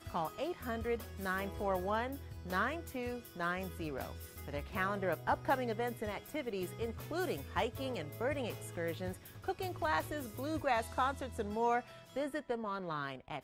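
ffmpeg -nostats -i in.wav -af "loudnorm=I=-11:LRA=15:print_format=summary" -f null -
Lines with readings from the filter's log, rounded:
Input Integrated:    -37.9 LUFS
Input True Peak:     -19.4 dBTP
Input LRA:             2.4 LU
Input Threshold:     -47.9 LUFS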